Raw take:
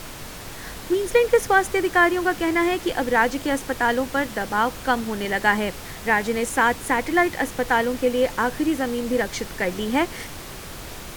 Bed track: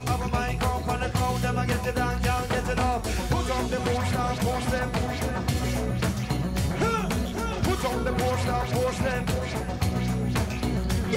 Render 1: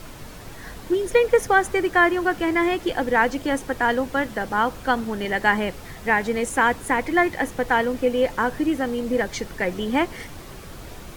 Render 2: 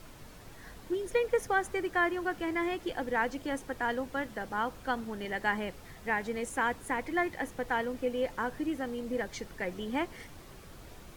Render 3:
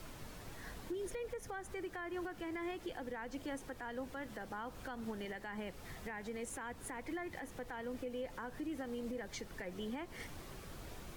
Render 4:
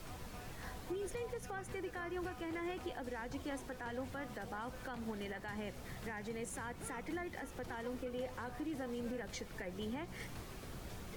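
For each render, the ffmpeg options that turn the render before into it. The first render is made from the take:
-af "afftdn=nr=7:nf=-37"
-af "volume=-11dB"
-filter_complex "[0:a]acrossover=split=180[a][b];[b]acompressor=threshold=-31dB:ratio=6[c];[a][c]amix=inputs=2:normalize=0,alimiter=level_in=10dB:limit=-24dB:level=0:latency=1:release=206,volume=-10dB"
-filter_complex "[1:a]volume=-27dB[a];[0:a][a]amix=inputs=2:normalize=0"

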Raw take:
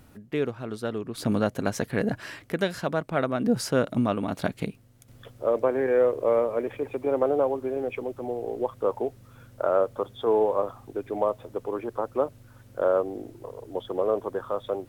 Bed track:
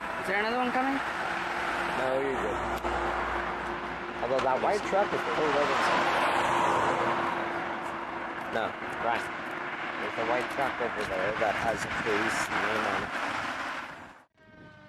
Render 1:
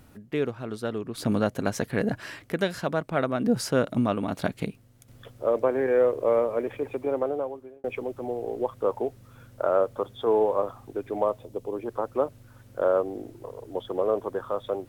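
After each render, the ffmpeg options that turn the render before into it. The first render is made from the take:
-filter_complex "[0:a]asettb=1/sr,asplit=3[a][b][c];[a]atrim=end=11.394[d];[b]atrim=start=11.39:end=11.86,asetpts=PTS-STARTPTS,afade=t=in:d=0.004:c=qsin,afade=t=out:st=0.466:d=0.004:c=qsin,equalizer=f=1.4k:t=o:w=1.2:g=-12[e];[c]atrim=start=11.856[f];[d][e]acrossfade=d=0.004:c1=hsin:c2=qsin[g];[g][f]acrossfade=d=0.004:c1=qsin:c2=hsin,asplit=2[h][i];[h]atrim=end=7.84,asetpts=PTS-STARTPTS,afade=t=out:st=6.93:d=0.91[j];[i]atrim=start=7.84,asetpts=PTS-STARTPTS,afade=t=in:d=0.004:c=hsin[k];[j][k]concat=n=2:v=0:a=1"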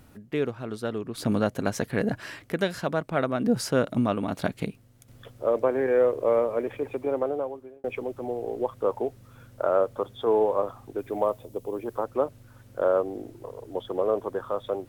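-filter_complex "[0:a]asettb=1/sr,asplit=3[a][b][c];[a]atrim=end=10.984[d];[b]atrim=start=10.98:end=12.04,asetpts=PTS-STARTPTS,afade=t=in:d=0.004:c=qsin,afade=t=out:st=1.056:d=0.004:c=qsin,highshelf=f=10k:g=9.5[e];[c]atrim=start=12.036[f];[d][e]acrossfade=d=0.004:c1=hsin:c2=qsin[g];[g][f]acrossfade=d=0.004:c1=qsin:c2=hsin"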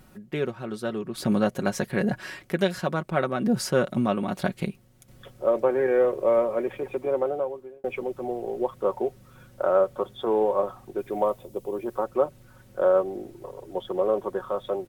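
-af "aecho=1:1:5.4:0.56"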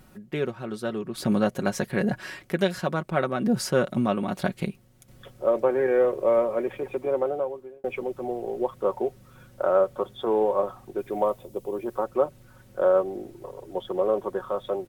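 -af anull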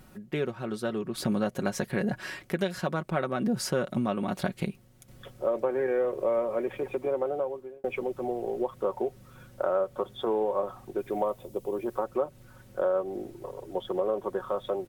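-af "acompressor=threshold=-26dB:ratio=2.5"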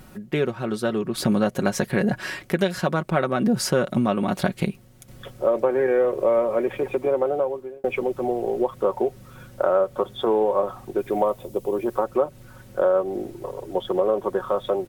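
-af "volume=7dB"

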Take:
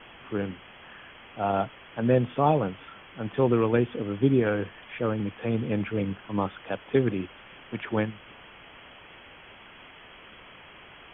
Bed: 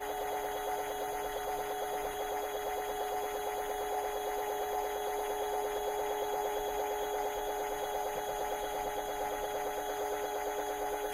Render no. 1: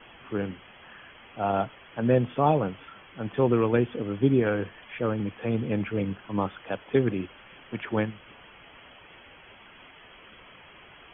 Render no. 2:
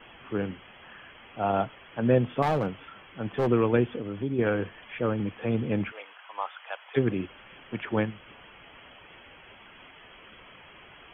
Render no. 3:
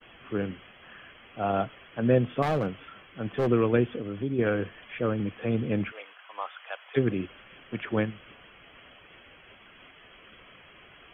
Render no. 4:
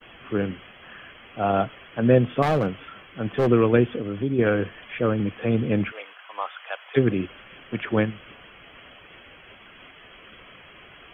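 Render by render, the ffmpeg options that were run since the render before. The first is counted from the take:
-af "afftdn=nr=6:nf=-50"
-filter_complex "[0:a]asettb=1/sr,asplit=3[a][b][c];[a]atrim=end=2.424[d];[b]atrim=start=2.42:end=3.47,asetpts=PTS-STARTPTS,afade=t=in:d=0.004:c=qsin,afade=t=out:st=1.046:d=0.004:c=qsin,volume=20.5dB,asoftclip=hard,volume=-20.5dB[e];[c]atrim=start=3.466[f];[d][e]acrossfade=d=0.004:c1=hsin:c2=qsin[g];[g][f]acrossfade=d=0.004:c1=qsin:c2=hsin,asplit=3[h][i][j];[h]afade=t=out:st=3.97:d=0.02[k];[i]acompressor=threshold=-32dB:ratio=2:attack=3.2:release=140:knee=1:detection=peak,afade=t=in:st=3.97:d=0.02,afade=t=out:st=4.38:d=0.02[l];[j]afade=t=in:st=4.38:d=0.02[m];[k][l][m]amix=inputs=3:normalize=0,asplit=3[n][o][p];[n]afade=t=out:st=5.9:d=0.02[q];[o]highpass=f=730:w=0.5412,highpass=f=730:w=1.3066,afade=t=in:st=5.9:d=0.02,afade=t=out:st=6.96:d=0.02[r];[p]afade=t=in:st=6.96:d=0.02[s];[q][r][s]amix=inputs=3:normalize=0"
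-af "agate=range=-33dB:threshold=-48dB:ratio=3:detection=peak,equalizer=f=890:w=4.9:g=-7"
-af "volume=5dB"

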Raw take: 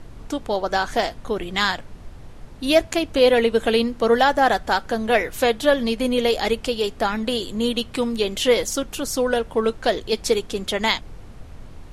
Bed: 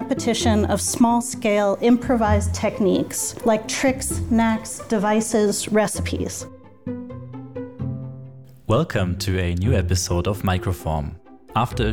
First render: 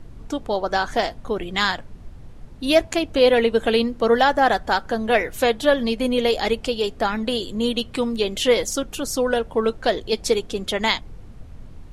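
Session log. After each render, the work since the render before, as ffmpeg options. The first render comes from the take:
-af "afftdn=nr=6:nf=-41"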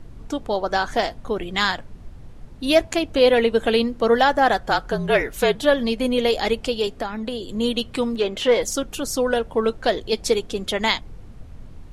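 -filter_complex "[0:a]asettb=1/sr,asplit=3[a][b][c];[a]atrim=end=4.614[d];[b]atrim=start=4.61:end=5.55,asetpts=PTS-STARTPTS,afade=t=in:d=0.004:c=qsin,afade=t=out:st=0.936:d=0.004:c=qsin,afreqshift=-46[e];[c]atrim=start=5.546[f];[d][e]acrossfade=d=0.004:c1=hsin:c2=qsin[g];[g][f]acrossfade=d=0.004:c1=qsin:c2=hsin,asettb=1/sr,asplit=3[h][i][j];[h]atrim=end=6.874[k];[i]atrim=start=6.87:end=7.49,asetpts=PTS-STARTPTS,afade=t=in:d=0.004:c=qsin,afade=t=out:st=0.616:d=0.004:c=qsin,acrossover=split=120|1100[l][m][n];[l]acompressor=threshold=-38dB:ratio=4[o];[m]acompressor=threshold=-26dB:ratio=4[p];[n]acompressor=threshold=-36dB:ratio=4[q];[o][p][q]amix=inputs=3:normalize=0[r];[j]atrim=start=7.486[s];[k][r]acrossfade=d=0.004:c1=hsin:c2=qsin[t];[t][s]acrossfade=d=0.004:c1=qsin:c2=hsin,asettb=1/sr,asplit=3[u][v][w];[u]atrim=end=8.154[x];[v]atrim=start=8.15:end=8.62,asetpts=PTS-STARTPTS,afade=t=in:d=0.004:c=qsin,afade=t=out:st=0.466:d=0.004:c=qsin,asplit=2[y][z];[z]highpass=f=720:p=1,volume=12dB,asoftclip=type=tanh:threshold=-6.5dB[aa];[y][aa]amix=inputs=2:normalize=0,lowpass=f=1.2k:p=1,volume=-6dB[ab];[w]atrim=start=8.616[ac];[x][ab]acrossfade=d=0.004:c1=hsin:c2=qsin[ad];[ad][ac]acrossfade=d=0.004:c1=qsin:c2=hsin"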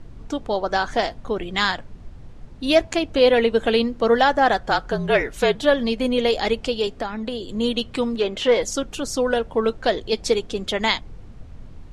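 -af "lowpass=8.1k"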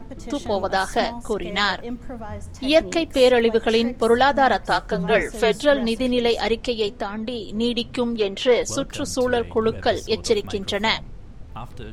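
-filter_complex "[1:a]volume=-16dB[a];[0:a][a]amix=inputs=2:normalize=0"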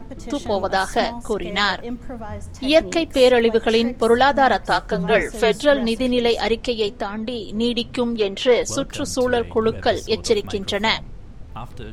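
-af "volume=1.5dB"

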